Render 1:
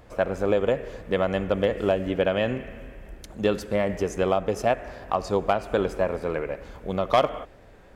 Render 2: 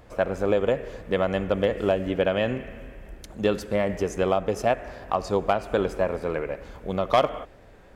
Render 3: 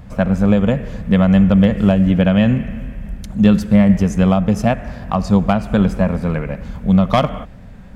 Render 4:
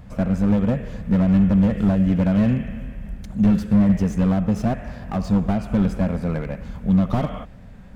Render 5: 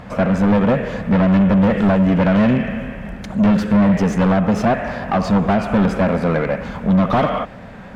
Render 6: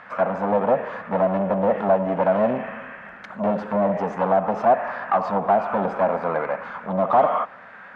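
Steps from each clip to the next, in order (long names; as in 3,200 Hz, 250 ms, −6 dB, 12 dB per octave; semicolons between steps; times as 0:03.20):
no processing that can be heard
low shelf with overshoot 270 Hz +9 dB, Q 3; level +5.5 dB
slew-rate limiting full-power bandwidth 92 Hz; level −4.5 dB
mid-hump overdrive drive 25 dB, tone 1,600 Hz, clips at −6 dBFS
envelope filter 660–1,600 Hz, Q 2.1, down, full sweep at −10 dBFS; level +3.5 dB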